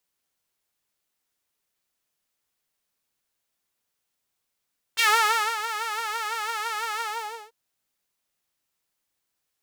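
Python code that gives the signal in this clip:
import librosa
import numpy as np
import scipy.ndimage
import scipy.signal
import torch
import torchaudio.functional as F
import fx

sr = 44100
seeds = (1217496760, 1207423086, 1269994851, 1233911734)

y = fx.sub_patch_vibrato(sr, seeds[0], note=69, wave='saw', wave2='saw', interval_st=0, detune_cents=23, level2_db=-9.0, sub_db=-28, noise_db=-30.0, kind='highpass', cutoff_hz=580.0, q=2.1, env_oct=2.5, env_decay_s=0.12, env_sustain_pct=40, attack_ms=23.0, decay_s=0.58, sustain_db=-12.0, release_s=0.5, note_s=2.04, lfo_hz=6.0, vibrato_cents=93)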